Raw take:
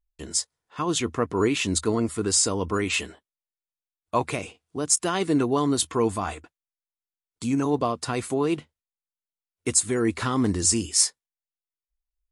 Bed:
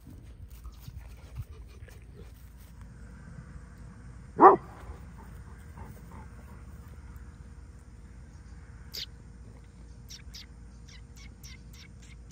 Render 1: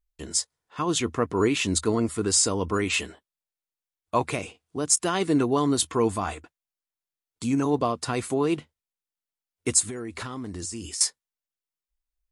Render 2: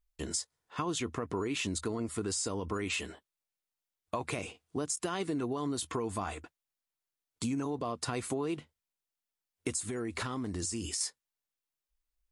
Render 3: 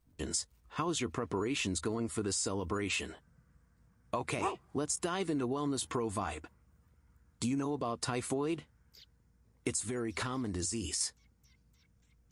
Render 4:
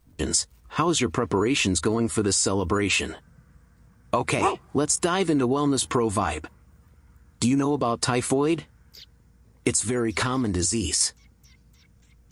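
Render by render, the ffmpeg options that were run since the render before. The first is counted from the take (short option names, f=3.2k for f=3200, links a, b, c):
-filter_complex "[0:a]asettb=1/sr,asplit=3[a][b][c];[a]atrim=end=9.854[d];[b]atrim=start=9.85:end=11.01,asetpts=PTS-STARTPTS,afade=t=in:d=0.004:c=qsin,afade=t=out:st=1.156:d=0.004:c=qsin,acompressor=threshold=-30dB:ratio=16:attack=3.2:release=140:knee=1:detection=peak[e];[c]atrim=start=11.006[f];[d][e]acrossfade=d=0.004:c1=hsin:c2=qsin[g];[g][f]acrossfade=d=0.004:c1=qsin:c2=hsin"
-af "alimiter=limit=-16.5dB:level=0:latency=1:release=41,acompressor=threshold=-31dB:ratio=6"
-filter_complex "[1:a]volume=-19.5dB[a];[0:a][a]amix=inputs=2:normalize=0"
-af "volume=11.5dB"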